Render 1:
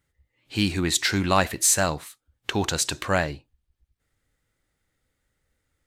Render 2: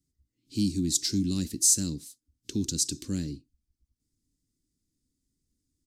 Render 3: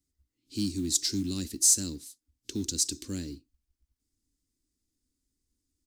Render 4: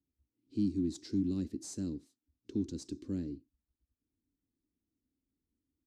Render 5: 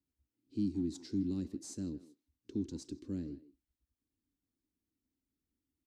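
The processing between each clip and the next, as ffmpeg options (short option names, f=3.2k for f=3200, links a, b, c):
-filter_complex "[0:a]firequalizer=gain_entry='entry(110,0);entry(270,10);entry(660,-30);entry(5000,6);entry(14000,-1)':delay=0.05:min_phase=1,acrossover=split=260|3000[a][b][c];[b]acompressor=threshold=-29dB:ratio=6[d];[a][d][c]amix=inputs=3:normalize=0,volume=-5.5dB"
-af "equalizer=f=150:t=o:w=0.97:g=-10.5,acrusher=bits=7:mode=log:mix=0:aa=0.000001"
-af "bandpass=f=240:t=q:w=0.56:csg=0"
-filter_complex "[0:a]asplit=2[a][b];[b]adelay=160,highpass=300,lowpass=3.4k,asoftclip=type=hard:threshold=-31.5dB,volume=-15dB[c];[a][c]amix=inputs=2:normalize=0,volume=-2.5dB"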